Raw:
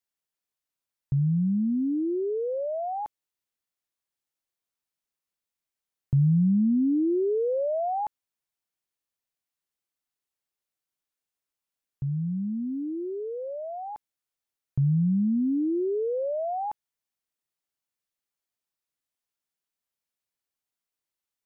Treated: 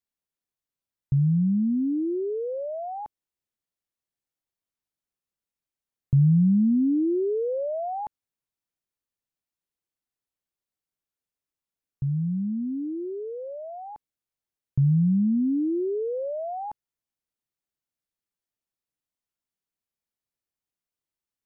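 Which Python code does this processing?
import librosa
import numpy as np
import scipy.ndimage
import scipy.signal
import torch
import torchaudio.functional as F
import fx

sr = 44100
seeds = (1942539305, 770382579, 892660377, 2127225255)

y = fx.low_shelf(x, sr, hz=460.0, db=8.5)
y = y * 10.0 ** (-5.0 / 20.0)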